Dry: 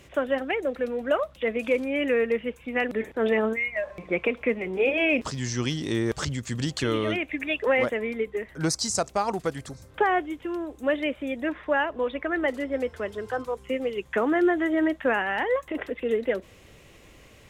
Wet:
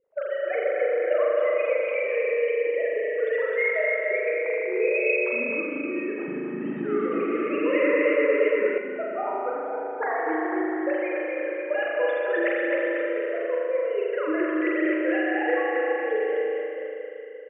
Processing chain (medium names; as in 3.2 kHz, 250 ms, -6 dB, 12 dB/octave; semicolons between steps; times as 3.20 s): formants replaced by sine waves; level-controlled noise filter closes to 360 Hz, open at -18.5 dBFS; tilt EQ +1.5 dB/octave; compression, threshold -26 dBFS, peak gain reduction 13.5 dB; bouncing-ball echo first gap 260 ms, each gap 0.9×, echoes 5; reverberation RT60 2.2 s, pre-delay 38 ms, DRR -4 dB; 6.49–8.78 s: modulated delay 115 ms, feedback 77%, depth 69 cents, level -4 dB